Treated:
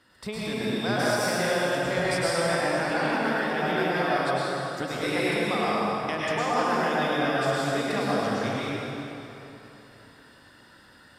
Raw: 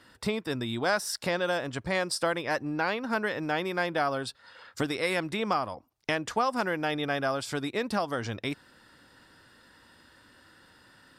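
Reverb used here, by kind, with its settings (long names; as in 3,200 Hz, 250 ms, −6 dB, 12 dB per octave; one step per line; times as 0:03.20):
dense smooth reverb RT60 3.3 s, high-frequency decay 0.75×, pre-delay 90 ms, DRR −8.5 dB
level −5 dB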